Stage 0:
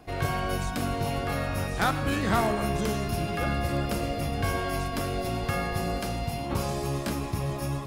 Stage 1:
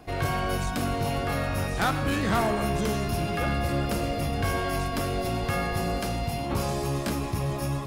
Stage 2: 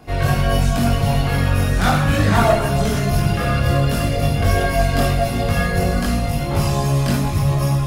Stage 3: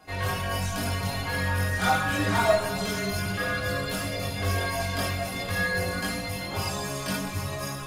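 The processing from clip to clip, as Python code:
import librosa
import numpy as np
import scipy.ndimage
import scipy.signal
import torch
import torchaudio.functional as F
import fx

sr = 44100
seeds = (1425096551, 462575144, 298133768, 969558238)

y1 = 10.0 ** (-20.5 / 20.0) * np.tanh(x / 10.0 ** (-20.5 / 20.0))
y1 = y1 * librosa.db_to_amplitude(2.5)
y2 = fx.rev_schroeder(y1, sr, rt60_s=0.68, comb_ms=26, drr_db=1.0)
y2 = fx.chorus_voices(y2, sr, voices=6, hz=0.83, base_ms=21, depth_ms=1.1, mix_pct=50)
y2 = y2 * librosa.db_to_amplitude(8.5)
y3 = fx.low_shelf(y2, sr, hz=270.0, db=-11.5)
y3 = fx.stiff_resonator(y3, sr, f0_hz=94.0, decay_s=0.21, stiffness=0.008)
y3 = y3 * librosa.db_to_amplitude(3.0)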